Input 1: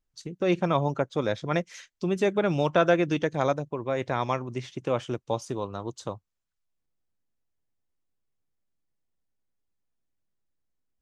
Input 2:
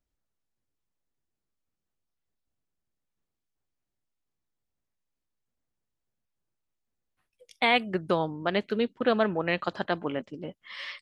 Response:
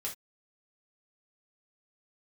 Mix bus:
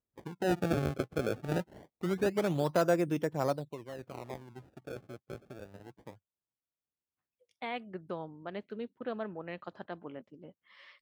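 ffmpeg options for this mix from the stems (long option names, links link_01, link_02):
-filter_complex "[0:a]acrusher=samples=26:mix=1:aa=0.000001:lfo=1:lforange=41.6:lforate=0.24,volume=-5dB,afade=type=out:start_time=3.51:duration=0.37:silence=0.316228[link_01];[1:a]volume=-12.5dB[link_02];[link_01][link_02]amix=inputs=2:normalize=0,highpass=67,highshelf=frequency=2200:gain=-10"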